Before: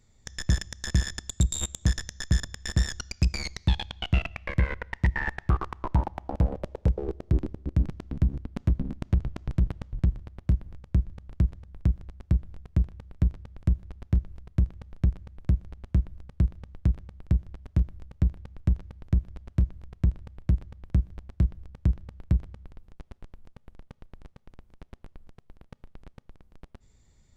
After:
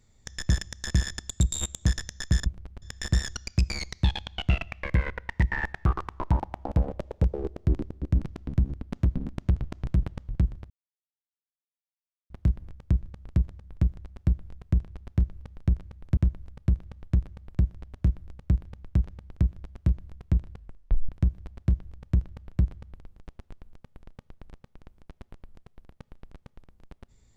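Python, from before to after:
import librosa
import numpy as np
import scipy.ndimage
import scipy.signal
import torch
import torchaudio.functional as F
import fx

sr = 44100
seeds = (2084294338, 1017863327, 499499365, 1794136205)

y = fx.edit(x, sr, fx.insert_silence(at_s=10.34, length_s=1.6),
    fx.cut(start_s=12.95, length_s=0.91),
    fx.cut(start_s=14.37, length_s=0.41),
    fx.move(start_s=15.53, length_s=0.36, to_s=2.46),
    fx.tape_stop(start_s=20.23, length_s=0.58), tone=tone)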